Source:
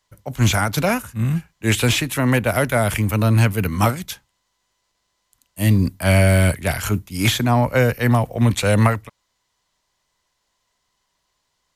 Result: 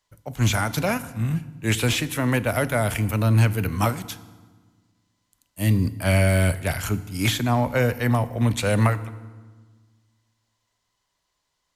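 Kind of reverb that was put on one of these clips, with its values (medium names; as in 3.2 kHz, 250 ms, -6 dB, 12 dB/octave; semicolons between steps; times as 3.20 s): FDN reverb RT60 1.4 s, low-frequency decay 1.4×, high-frequency decay 0.75×, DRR 14 dB; trim -4.5 dB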